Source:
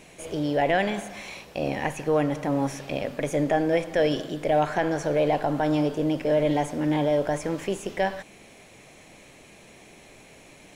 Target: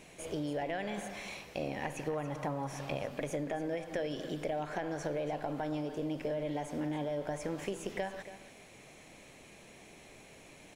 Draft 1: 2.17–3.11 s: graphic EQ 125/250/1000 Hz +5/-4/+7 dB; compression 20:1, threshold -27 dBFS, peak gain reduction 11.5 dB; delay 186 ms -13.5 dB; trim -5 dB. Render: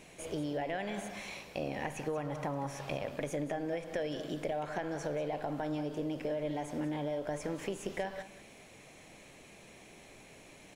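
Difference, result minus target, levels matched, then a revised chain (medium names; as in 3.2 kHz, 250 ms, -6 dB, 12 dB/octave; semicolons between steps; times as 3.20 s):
echo 95 ms early
2.17–3.11 s: graphic EQ 125/250/1000 Hz +5/-4/+7 dB; compression 20:1, threshold -27 dBFS, peak gain reduction 11.5 dB; delay 281 ms -13.5 dB; trim -5 dB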